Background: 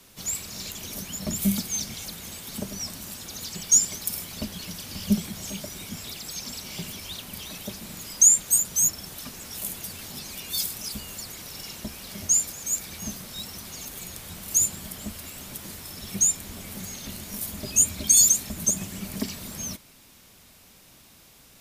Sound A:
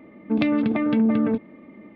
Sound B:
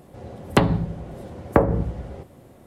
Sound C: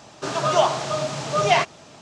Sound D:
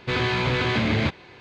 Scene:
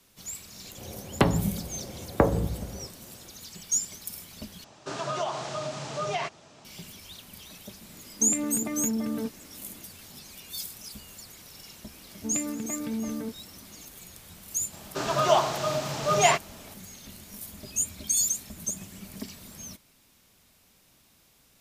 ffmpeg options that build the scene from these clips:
-filter_complex "[3:a]asplit=2[s0][s1];[1:a]asplit=2[s2][s3];[0:a]volume=0.376[s4];[s0]acompressor=threshold=0.0891:ratio=6:attack=26:release=108:knee=6:detection=rms[s5];[s2]alimiter=limit=0.2:level=0:latency=1:release=70[s6];[s4]asplit=2[s7][s8];[s7]atrim=end=4.644[s9];[s5]atrim=end=2.01,asetpts=PTS-STARTPTS,volume=0.447[s10];[s8]atrim=start=6.646[s11];[2:a]atrim=end=2.66,asetpts=PTS-STARTPTS,volume=0.596,afade=t=in:d=0.004:c=hsin,afade=t=out:st=2.656:d=0.004:c=hsin,adelay=640[s12];[s6]atrim=end=1.95,asetpts=PTS-STARTPTS,volume=0.355,afade=t=in:d=0.004:c=hsin,afade=t=out:st=1.946:d=0.004:c=hsin,adelay=7910[s13];[s3]atrim=end=1.95,asetpts=PTS-STARTPTS,volume=0.237,afade=t=in:d=0.004:c=hsin,afade=t=out:st=1.946:d=0.004:c=hsin,adelay=11940[s14];[s1]atrim=end=2.01,asetpts=PTS-STARTPTS,volume=0.708,afade=t=in:d=0.004:c=hsin,afade=t=out:st=2.006:d=0.004:c=hsin,adelay=14730[s15];[s9][s10]acrossfade=d=0.004:c1=hsin:c2=hsin[s16];[s16][s11]acrossfade=d=0.004:c1=hsin:c2=hsin[s17];[s17][s12][s13][s14][s15]amix=inputs=5:normalize=0"

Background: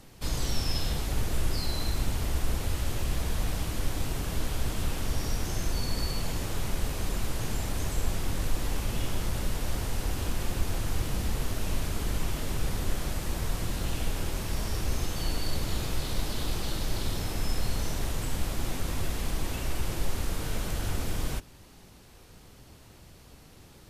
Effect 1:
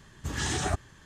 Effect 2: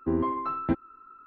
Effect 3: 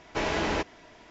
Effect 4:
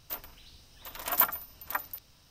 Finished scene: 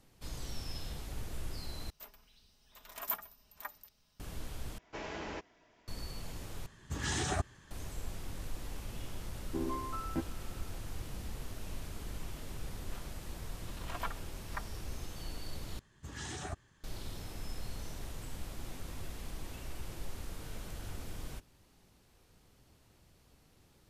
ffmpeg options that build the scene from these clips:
-filter_complex "[4:a]asplit=2[s0][s1];[1:a]asplit=2[s2][s3];[0:a]volume=0.237[s4];[s0]aecho=1:1:4.8:0.52[s5];[3:a]equalizer=f=3900:w=4.3:g=-2.5[s6];[s1]lowpass=4200[s7];[s4]asplit=5[s8][s9][s10][s11][s12];[s8]atrim=end=1.904[s13];[s5]atrim=end=2.3,asetpts=PTS-STARTPTS,volume=0.237[s14];[s9]atrim=start=4.196:end=4.784[s15];[s6]atrim=end=1.1,asetpts=PTS-STARTPTS,volume=0.2[s16];[s10]atrim=start=5.876:end=6.664[s17];[s2]atrim=end=1.05,asetpts=PTS-STARTPTS,volume=0.596[s18];[s11]atrim=start=7.706:end=15.794[s19];[s3]atrim=end=1.05,asetpts=PTS-STARTPTS,volume=0.237[s20];[s12]atrim=start=16.836[s21];[2:a]atrim=end=1.26,asetpts=PTS-STARTPTS,volume=0.299,afade=t=in:d=0.004:c=hsin,afade=t=out:st=1.256:d=0.004:c=hsin,adelay=9470[s22];[s7]atrim=end=2.3,asetpts=PTS-STARTPTS,volume=0.355,afade=t=in:d=0.004:c=hsin,afade=t=out:st=2.296:d=0.004:c=hsin,adelay=12820[s23];[s13][s14]acrossfade=d=0.004:c1=hsin:c2=hsin[s24];[s24][s15]acrossfade=d=0.004:c1=hsin:c2=hsin[s25];[s25][s16]acrossfade=d=0.004:c1=hsin:c2=hsin[s26];[s26][s17]acrossfade=d=0.004:c1=hsin:c2=hsin[s27];[s27][s18]acrossfade=d=0.004:c1=hsin:c2=hsin[s28];[s28][s19]acrossfade=d=0.004:c1=hsin:c2=hsin[s29];[s29][s20]acrossfade=d=0.004:c1=hsin:c2=hsin[s30];[s30][s21]acrossfade=d=0.004:c1=hsin:c2=hsin[s31];[s31][s22][s23]amix=inputs=3:normalize=0"

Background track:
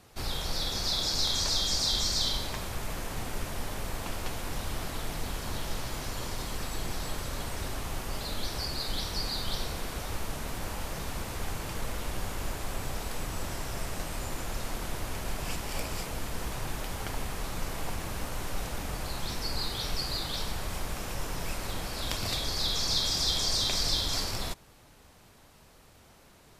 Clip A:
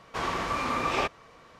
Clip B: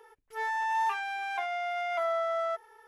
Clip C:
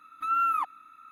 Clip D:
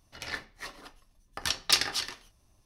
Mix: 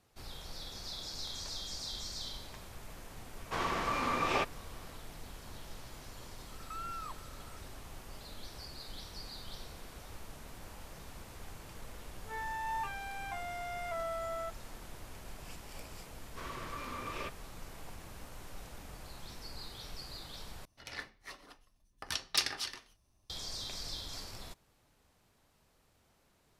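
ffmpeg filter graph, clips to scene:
-filter_complex "[1:a]asplit=2[s0][s1];[0:a]volume=0.211[s2];[3:a]acompressor=threshold=0.02:ratio=6:attack=3.2:release=140:knee=1:detection=peak[s3];[s1]asuperstop=centerf=780:order=4:qfactor=3.1[s4];[s2]asplit=2[s5][s6];[s5]atrim=end=20.654[s7];[4:a]atrim=end=2.65,asetpts=PTS-STARTPTS,volume=0.447[s8];[s6]atrim=start=23.296[s9];[s0]atrim=end=1.59,asetpts=PTS-STARTPTS,volume=0.631,afade=t=in:d=0.004:c=hsin,afade=t=out:st=1.586:d=0.004:c=hsin,adelay=148617S[s10];[s3]atrim=end=1.11,asetpts=PTS-STARTPTS,volume=0.422,afade=t=in:d=0.004:c=hsin,afade=t=out:st=1.106:d=0.004:c=hsin,adelay=6480[s11];[2:a]atrim=end=2.87,asetpts=PTS-STARTPTS,volume=0.376,afade=t=in:d=0.004:c=hsin,afade=t=out:st=2.866:d=0.004:c=hsin,adelay=11940[s12];[s4]atrim=end=1.59,asetpts=PTS-STARTPTS,volume=0.211,afade=t=in:d=0.004:c=hsin,afade=t=out:st=1.586:d=0.004:c=hsin,adelay=16220[s13];[s7][s8]acrossfade=d=0.004:c1=hsin:c2=hsin[s14];[s14][s9]acrossfade=d=0.004:c1=hsin:c2=hsin[s15];[s15][s10][s11][s12][s13]amix=inputs=5:normalize=0"

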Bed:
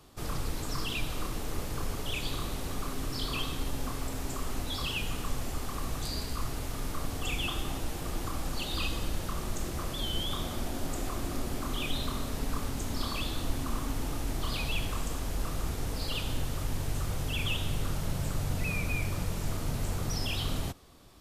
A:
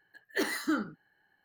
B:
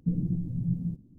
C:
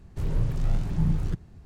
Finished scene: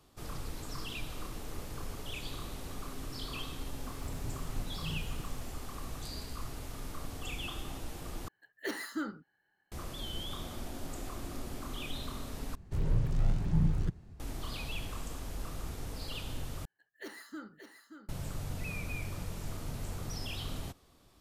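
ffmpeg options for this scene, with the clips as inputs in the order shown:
-filter_complex "[3:a]asplit=2[s0][s1];[1:a]asplit=2[s2][s3];[0:a]volume=0.447[s4];[s0]aeval=exprs='val(0)+0.5*0.0237*sgn(val(0))':c=same[s5];[s3]aecho=1:1:578:0.398[s6];[s4]asplit=4[s7][s8][s9][s10];[s7]atrim=end=8.284[s11];[s2]atrim=end=1.44,asetpts=PTS-STARTPTS,volume=0.473[s12];[s8]atrim=start=9.716:end=12.554[s13];[s1]atrim=end=1.65,asetpts=PTS-STARTPTS,volume=0.668[s14];[s9]atrim=start=14.196:end=16.654[s15];[s6]atrim=end=1.44,asetpts=PTS-STARTPTS,volume=0.178[s16];[s10]atrim=start=18.086[s17];[s5]atrim=end=1.65,asetpts=PTS-STARTPTS,volume=0.158,afade=t=in:d=0.004:c=hsin,afade=t=out:st=1.646:d=0.004:c=hsin,adelay=3860[s18];[s11][s12]acrossfade=d=0.004:c1=hsin:c2=hsin[s19];[s19][s13]acrossfade=d=0.004:c1=hsin:c2=hsin[s20];[s20][s14]acrossfade=d=0.004:c1=hsin:c2=hsin[s21];[s21][s15]acrossfade=d=0.004:c1=hsin:c2=hsin[s22];[s22][s16]acrossfade=d=0.004:c1=hsin:c2=hsin[s23];[s23][s17]acrossfade=d=0.004:c1=hsin:c2=hsin[s24];[s24][s18]amix=inputs=2:normalize=0"

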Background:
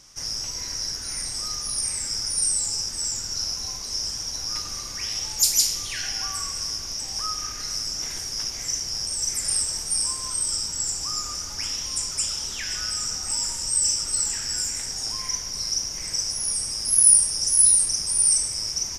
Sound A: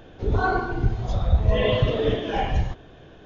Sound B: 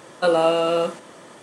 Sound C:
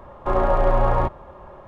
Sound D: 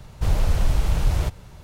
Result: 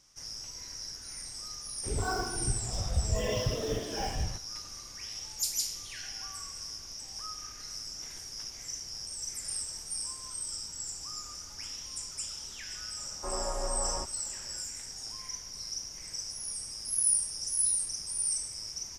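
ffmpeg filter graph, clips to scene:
-filter_complex "[0:a]volume=0.251[s0];[1:a]acrusher=bits=5:mix=0:aa=0.5[s1];[3:a]equalizer=f=110:t=o:w=0.43:g=-14[s2];[s1]atrim=end=3.25,asetpts=PTS-STARTPTS,volume=0.299,afade=t=in:d=0.004:c=hsin,afade=t=out:st=3.246:d=0.004:c=hsin,adelay=1640[s3];[s2]atrim=end=1.67,asetpts=PTS-STARTPTS,volume=0.158,afade=t=in:d=0.004:c=hsin,afade=t=out:st=1.666:d=0.004:c=hsin,adelay=12970[s4];[s0][s3][s4]amix=inputs=3:normalize=0"

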